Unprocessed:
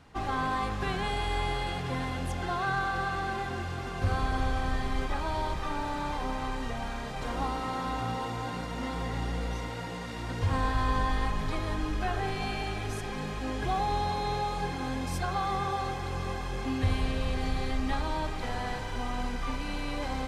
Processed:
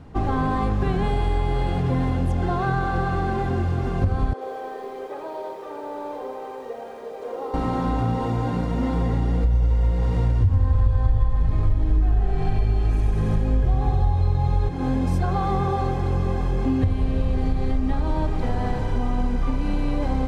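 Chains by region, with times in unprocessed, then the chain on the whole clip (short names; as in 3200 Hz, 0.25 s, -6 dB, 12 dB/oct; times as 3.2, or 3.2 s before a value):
4.33–7.54 ladder high-pass 410 Hz, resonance 65% + lo-fi delay 82 ms, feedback 55%, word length 9-bit, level -7 dB
9.44–14.69 resonant low shelf 140 Hz +9 dB, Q 1.5 + bouncing-ball echo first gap 0.1 s, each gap 0.9×, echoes 6, each echo -2 dB
whole clip: tilt shelf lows +8.5 dB, about 830 Hz; compressor 5:1, threshold -24 dBFS; gain +6.5 dB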